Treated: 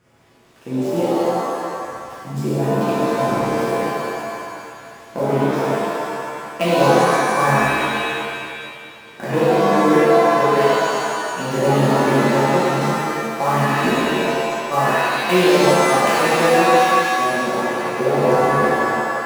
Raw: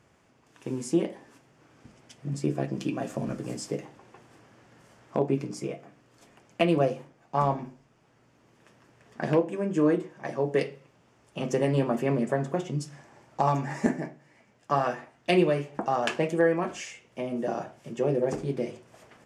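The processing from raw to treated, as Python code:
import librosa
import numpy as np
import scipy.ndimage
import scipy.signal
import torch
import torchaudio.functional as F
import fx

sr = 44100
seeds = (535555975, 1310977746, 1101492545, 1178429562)

y = fx.dead_time(x, sr, dead_ms=0.076)
y = fx.rev_shimmer(y, sr, seeds[0], rt60_s=2.0, semitones=7, shimmer_db=-2, drr_db=-9.5)
y = y * 10.0 ** (-1.0 / 20.0)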